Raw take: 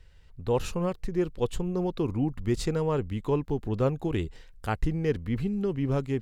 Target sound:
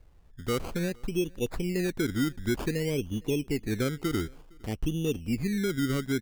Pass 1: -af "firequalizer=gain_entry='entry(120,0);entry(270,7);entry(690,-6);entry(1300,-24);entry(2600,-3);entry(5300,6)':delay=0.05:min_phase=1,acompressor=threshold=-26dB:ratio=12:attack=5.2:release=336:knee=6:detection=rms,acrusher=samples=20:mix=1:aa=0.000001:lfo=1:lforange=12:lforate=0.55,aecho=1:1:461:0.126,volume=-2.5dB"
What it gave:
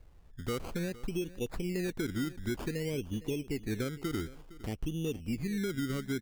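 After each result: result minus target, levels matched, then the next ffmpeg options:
downward compressor: peak gain reduction +7.5 dB; echo-to-direct +10 dB
-af "firequalizer=gain_entry='entry(120,0);entry(270,7);entry(690,-6);entry(1300,-24);entry(2600,-3);entry(5300,6)':delay=0.05:min_phase=1,acompressor=threshold=-17.5dB:ratio=12:attack=5.2:release=336:knee=6:detection=rms,acrusher=samples=20:mix=1:aa=0.000001:lfo=1:lforange=12:lforate=0.55,aecho=1:1:461:0.126,volume=-2.5dB"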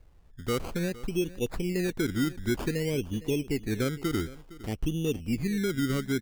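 echo-to-direct +10 dB
-af "firequalizer=gain_entry='entry(120,0);entry(270,7);entry(690,-6);entry(1300,-24);entry(2600,-3);entry(5300,6)':delay=0.05:min_phase=1,acompressor=threshold=-17.5dB:ratio=12:attack=5.2:release=336:knee=6:detection=rms,acrusher=samples=20:mix=1:aa=0.000001:lfo=1:lforange=12:lforate=0.55,aecho=1:1:461:0.0398,volume=-2.5dB"

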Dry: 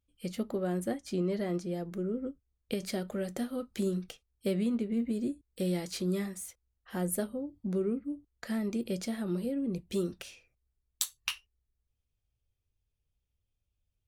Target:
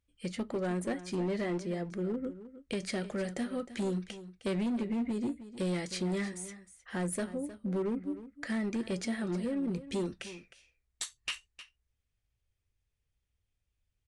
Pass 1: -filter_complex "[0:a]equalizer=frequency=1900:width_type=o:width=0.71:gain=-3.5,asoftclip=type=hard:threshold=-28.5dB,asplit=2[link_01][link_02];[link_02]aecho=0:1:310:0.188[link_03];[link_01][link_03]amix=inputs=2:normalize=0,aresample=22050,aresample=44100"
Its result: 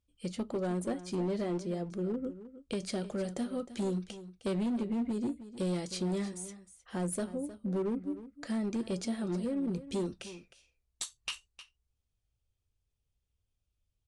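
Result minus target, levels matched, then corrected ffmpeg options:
2,000 Hz band −6.5 dB
-filter_complex "[0:a]equalizer=frequency=1900:width_type=o:width=0.71:gain=7,asoftclip=type=hard:threshold=-28.5dB,asplit=2[link_01][link_02];[link_02]aecho=0:1:310:0.188[link_03];[link_01][link_03]amix=inputs=2:normalize=0,aresample=22050,aresample=44100"

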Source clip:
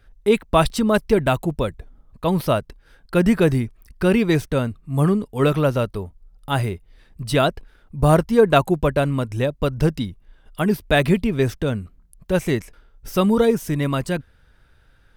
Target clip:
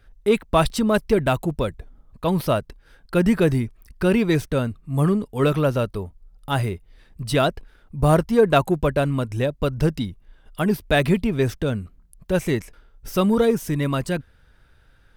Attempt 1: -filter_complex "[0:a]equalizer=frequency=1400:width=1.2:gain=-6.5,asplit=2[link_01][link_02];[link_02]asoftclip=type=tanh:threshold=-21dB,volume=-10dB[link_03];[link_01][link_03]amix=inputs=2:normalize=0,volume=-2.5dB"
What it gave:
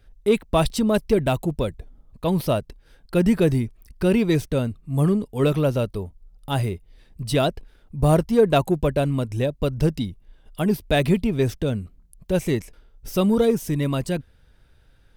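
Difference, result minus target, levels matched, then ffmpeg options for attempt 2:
1,000 Hz band −2.5 dB
-filter_complex "[0:a]asplit=2[link_01][link_02];[link_02]asoftclip=type=tanh:threshold=-21dB,volume=-10dB[link_03];[link_01][link_03]amix=inputs=2:normalize=0,volume=-2.5dB"

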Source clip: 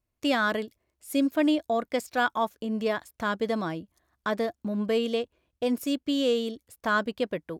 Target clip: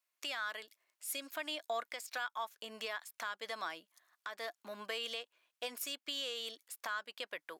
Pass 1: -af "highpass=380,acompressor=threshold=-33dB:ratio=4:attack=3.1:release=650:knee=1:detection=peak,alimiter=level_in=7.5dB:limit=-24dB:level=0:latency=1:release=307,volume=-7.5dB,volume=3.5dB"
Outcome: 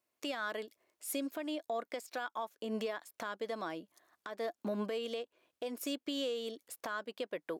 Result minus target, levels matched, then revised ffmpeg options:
500 Hz band +5.5 dB
-af "highpass=1200,acompressor=threshold=-33dB:ratio=4:attack=3.1:release=650:knee=1:detection=peak,alimiter=level_in=7.5dB:limit=-24dB:level=0:latency=1:release=307,volume=-7.5dB,volume=3.5dB"

